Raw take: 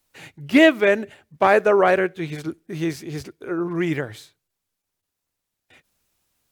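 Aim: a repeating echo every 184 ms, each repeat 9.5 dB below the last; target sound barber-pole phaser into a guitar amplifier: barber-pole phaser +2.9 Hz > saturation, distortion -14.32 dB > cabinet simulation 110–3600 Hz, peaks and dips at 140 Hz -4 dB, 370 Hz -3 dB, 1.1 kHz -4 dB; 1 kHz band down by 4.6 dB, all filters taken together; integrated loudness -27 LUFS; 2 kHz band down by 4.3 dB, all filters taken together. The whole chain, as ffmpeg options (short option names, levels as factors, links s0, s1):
-filter_complex "[0:a]equalizer=f=1000:t=o:g=-4.5,equalizer=f=2000:t=o:g=-3.5,aecho=1:1:184|368|552|736:0.335|0.111|0.0365|0.012,asplit=2[s0][s1];[s1]afreqshift=2.9[s2];[s0][s2]amix=inputs=2:normalize=1,asoftclip=threshold=0.188,highpass=110,equalizer=f=140:t=q:w=4:g=-4,equalizer=f=370:t=q:w=4:g=-3,equalizer=f=1100:t=q:w=4:g=-4,lowpass=f=3600:w=0.5412,lowpass=f=3600:w=1.3066,volume=1.06"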